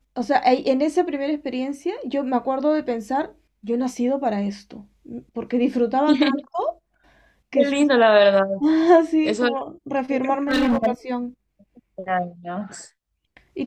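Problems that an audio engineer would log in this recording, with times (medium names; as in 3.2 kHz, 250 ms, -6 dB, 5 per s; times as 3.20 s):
10.49–10.87 s: clipped -15.5 dBFS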